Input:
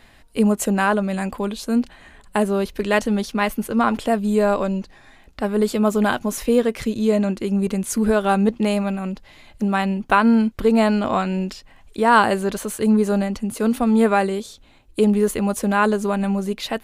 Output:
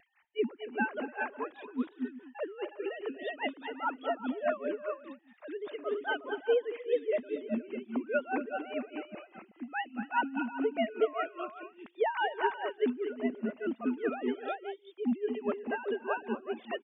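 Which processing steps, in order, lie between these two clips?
formants replaced by sine waves; tilt EQ +2 dB/octave; wow and flutter 24 cents; on a send: multi-tap echo 232/244/293/366/510 ms -14.5/-12.5/-18.5/-5/-18 dB; on the sum: logarithmic tremolo 4.9 Hz, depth 18 dB; trim -8 dB

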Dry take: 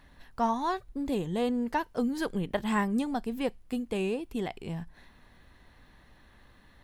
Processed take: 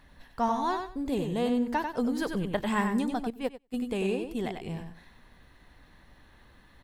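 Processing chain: on a send: feedback delay 94 ms, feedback 21%, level -6 dB; 3.30–3.74 s: on the sum: upward expansion 2.5:1, over -43 dBFS

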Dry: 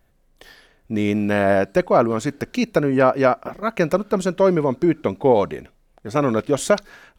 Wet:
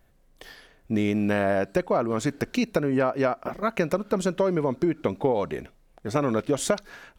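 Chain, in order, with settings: compression, threshold -20 dBFS, peak gain reduction 10 dB

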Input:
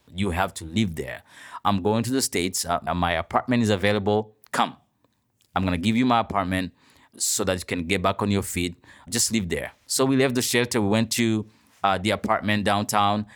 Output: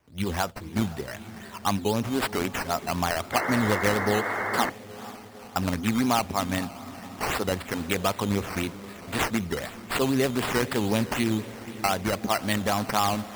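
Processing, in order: echo that smears into a reverb 478 ms, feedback 61%, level -15 dB; decimation with a swept rate 10×, swing 60% 3.9 Hz; painted sound noise, 3.32–4.70 s, 290–2200 Hz -26 dBFS; trim -3.5 dB

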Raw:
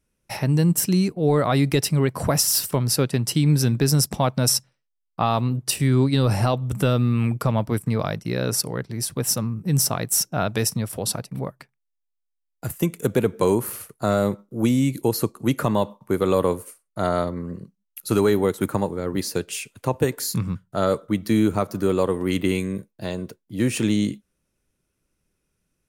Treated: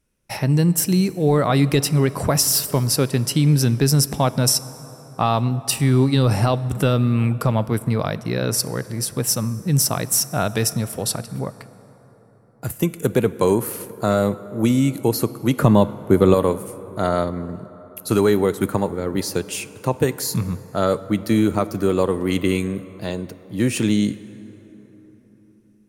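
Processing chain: 15.57–16.34 s: bass shelf 430 Hz +8.5 dB; plate-style reverb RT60 4.5 s, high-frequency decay 0.45×, DRR 15.5 dB; trim +2 dB

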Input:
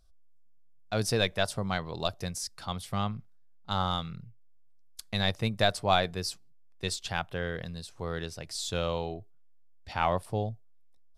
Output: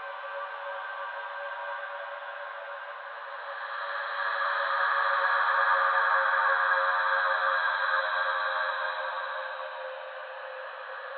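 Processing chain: echo that smears into a reverb 499 ms, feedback 57%, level -9 dB; mistuned SSB +360 Hz 220–2700 Hz; Paulstretch 15×, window 0.25 s, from 3.41 s; trim +5.5 dB

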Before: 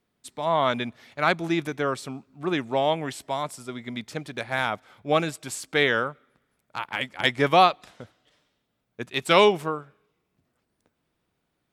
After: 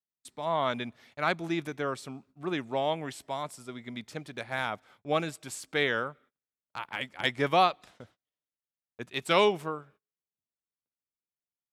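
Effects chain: gate -51 dBFS, range -27 dB; trim -6 dB

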